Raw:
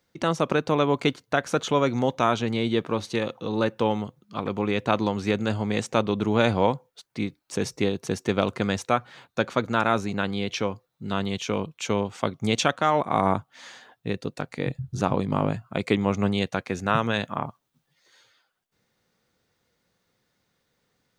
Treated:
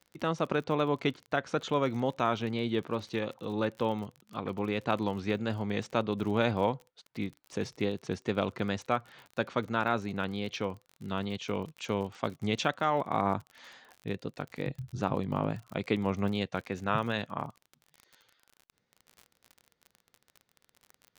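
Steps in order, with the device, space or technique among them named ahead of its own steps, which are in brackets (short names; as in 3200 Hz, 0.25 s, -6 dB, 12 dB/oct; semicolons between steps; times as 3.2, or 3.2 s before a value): lo-fi chain (LPF 5000 Hz 12 dB/oct; wow and flutter; crackle 37/s -33 dBFS); gain -6.5 dB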